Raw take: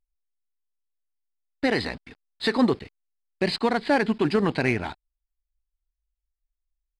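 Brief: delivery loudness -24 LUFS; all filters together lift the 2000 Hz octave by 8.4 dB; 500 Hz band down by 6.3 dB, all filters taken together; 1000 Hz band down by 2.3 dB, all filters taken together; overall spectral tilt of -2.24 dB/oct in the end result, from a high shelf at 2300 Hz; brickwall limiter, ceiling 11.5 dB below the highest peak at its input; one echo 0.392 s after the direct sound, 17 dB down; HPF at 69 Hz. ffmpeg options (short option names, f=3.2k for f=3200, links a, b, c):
-af "highpass=69,equalizer=f=500:t=o:g=-8,equalizer=f=1k:t=o:g=-3.5,equalizer=f=2k:t=o:g=8,highshelf=f=2.3k:g=7,alimiter=limit=-14.5dB:level=0:latency=1,aecho=1:1:392:0.141,volume=2dB"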